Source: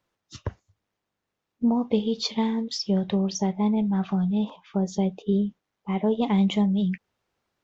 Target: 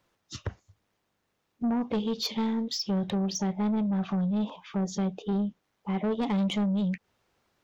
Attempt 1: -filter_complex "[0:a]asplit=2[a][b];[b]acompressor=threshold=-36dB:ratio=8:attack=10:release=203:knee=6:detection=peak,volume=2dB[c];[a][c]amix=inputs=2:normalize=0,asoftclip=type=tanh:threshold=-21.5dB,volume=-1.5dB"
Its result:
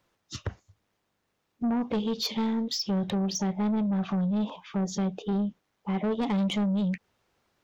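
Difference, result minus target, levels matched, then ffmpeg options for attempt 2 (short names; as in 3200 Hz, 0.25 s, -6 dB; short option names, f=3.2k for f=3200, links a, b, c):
compressor: peak gain reduction -7.5 dB
-filter_complex "[0:a]asplit=2[a][b];[b]acompressor=threshold=-44.5dB:ratio=8:attack=10:release=203:knee=6:detection=peak,volume=2dB[c];[a][c]amix=inputs=2:normalize=0,asoftclip=type=tanh:threshold=-21.5dB,volume=-1.5dB"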